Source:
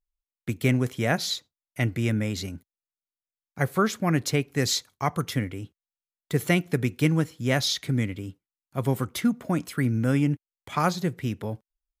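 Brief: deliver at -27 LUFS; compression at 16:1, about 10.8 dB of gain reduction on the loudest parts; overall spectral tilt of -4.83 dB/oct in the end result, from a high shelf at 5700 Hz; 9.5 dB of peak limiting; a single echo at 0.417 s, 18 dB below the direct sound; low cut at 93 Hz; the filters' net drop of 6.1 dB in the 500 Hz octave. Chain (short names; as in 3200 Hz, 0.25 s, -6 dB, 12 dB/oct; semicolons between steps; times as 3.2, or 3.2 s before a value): HPF 93 Hz; bell 500 Hz -8 dB; high shelf 5700 Hz -5.5 dB; compressor 16:1, threshold -30 dBFS; limiter -26 dBFS; echo 0.417 s -18 dB; gain +11 dB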